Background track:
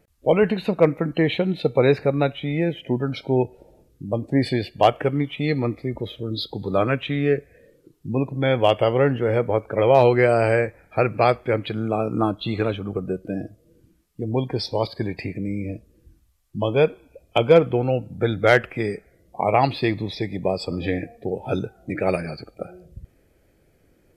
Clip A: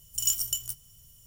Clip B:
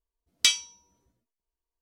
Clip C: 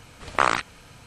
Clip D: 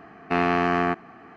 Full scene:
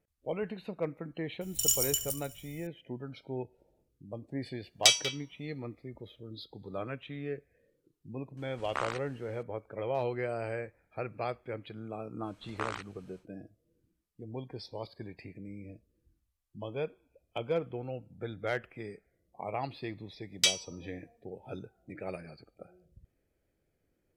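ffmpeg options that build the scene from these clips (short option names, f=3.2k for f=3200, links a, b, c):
-filter_complex "[2:a]asplit=2[a][b];[3:a]asplit=2[c][d];[0:a]volume=-17.5dB[e];[1:a]aecho=1:1:71|142|213|284|355|426|497:0.237|0.142|0.0854|0.0512|0.0307|0.0184|0.0111[f];[a]asplit=2[g][h];[h]adelay=190,highpass=300,lowpass=3.4k,asoftclip=type=hard:threshold=-16dB,volume=-9dB[i];[g][i]amix=inputs=2:normalize=0[j];[f]atrim=end=1.26,asetpts=PTS-STARTPTS,volume=-1dB,afade=t=in:d=0.004:c=hsin,afade=t=out:st=1.256:d=0.004:c=hsin,adelay=1410[k];[j]atrim=end=1.81,asetpts=PTS-STARTPTS,volume=-1dB,afade=t=in:d=0.004:c=hsin,afade=t=out:st=1.806:d=0.004:c=hsin,adelay=194481S[l];[c]atrim=end=1.06,asetpts=PTS-STARTPTS,volume=-14.5dB,afade=t=in:d=0.004:c=hsin,afade=t=out:st=1.056:d=0.004:c=hsin,adelay=8370[m];[d]atrim=end=1.06,asetpts=PTS-STARTPTS,volume=-16.5dB,afade=t=in:d=0.1,afade=t=out:st=0.96:d=0.1,adelay=12210[n];[b]atrim=end=1.81,asetpts=PTS-STARTPTS,volume=-4.5dB,afade=t=in:d=0.004:c=hsin,afade=t=out:st=1.806:d=0.004:c=hsin,adelay=19990[o];[e][k][l][m][n][o]amix=inputs=6:normalize=0"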